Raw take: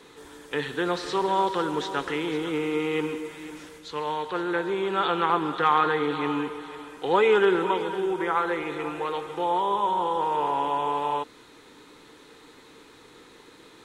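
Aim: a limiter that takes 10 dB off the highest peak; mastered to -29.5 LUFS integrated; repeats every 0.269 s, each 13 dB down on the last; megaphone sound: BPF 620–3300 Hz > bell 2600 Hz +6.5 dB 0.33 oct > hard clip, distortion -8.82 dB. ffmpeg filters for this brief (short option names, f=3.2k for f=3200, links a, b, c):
-af "alimiter=limit=-20dB:level=0:latency=1,highpass=620,lowpass=3.3k,equalizer=f=2.6k:t=o:w=0.33:g=6.5,aecho=1:1:269|538|807:0.224|0.0493|0.0108,asoftclip=type=hard:threshold=-31.5dB,volume=5.5dB"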